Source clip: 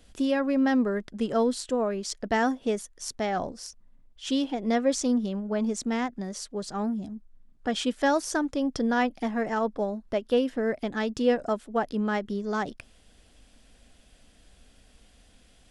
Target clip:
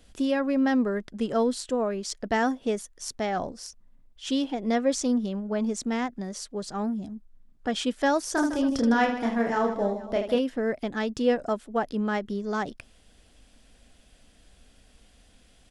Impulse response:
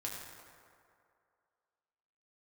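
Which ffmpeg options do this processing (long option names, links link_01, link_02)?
-filter_complex "[0:a]asplit=3[link_01][link_02][link_03];[link_01]afade=type=out:start_time=8.36:duration=0.02[link_04];[link_02]aecho=1:1:30|78|154.8|277.7|474.3:0.631|0.398|0.251|0.158|0.1,afade=type=in:start_time=8.36:duration=0.02,afade=type=out:start_time=10.38:duration=0.02[link_05];[link_03]afade=type=in:start_time=10.38:duration=0.02[link_06];[link_04][link_05][link_06]amix=inputs=3:normalize=0"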